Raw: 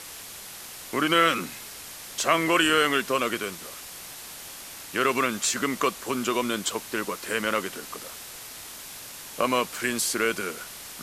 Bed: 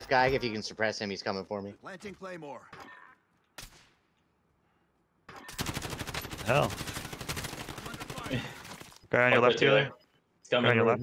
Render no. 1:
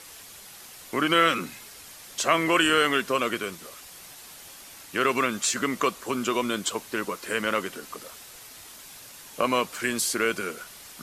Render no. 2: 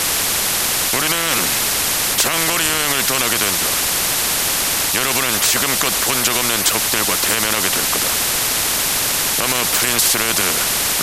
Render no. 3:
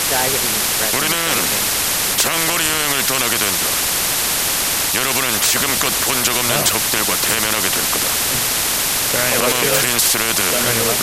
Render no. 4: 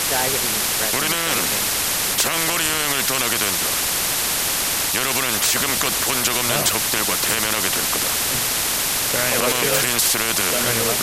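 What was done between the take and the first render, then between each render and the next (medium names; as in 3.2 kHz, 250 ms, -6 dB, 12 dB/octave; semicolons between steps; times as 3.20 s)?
noise reduction 6 dB, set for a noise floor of -42 dBFS
loudness maximiser +17.5 dB; spectrum-flattening compressor 4:1
add bed +3 dB
trim -3 dB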